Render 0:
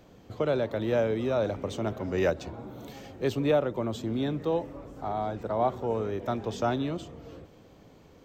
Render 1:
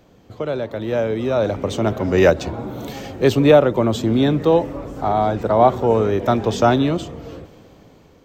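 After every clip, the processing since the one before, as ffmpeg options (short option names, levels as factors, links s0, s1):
-af "dynaudnorm=f=430:g=7:m=3.76,volume=1.33"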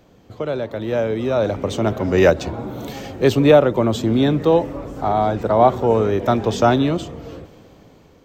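-af anull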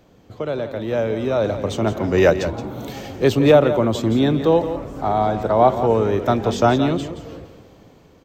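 -af "aecho=1:1:172:0.282,volume=0.891"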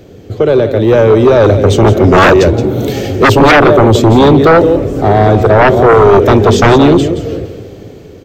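-af "equalizer=f=100:t=o:w=0.67:g=8,equalizer=f=400:t=o:w=0.67:g=9,equalizer=f=1000:t=o:w=0.67:g=-9,aeval=exprs='1.33*sin(PI/2*4.47*val(0)/1.33)':c=same,volume=0.668"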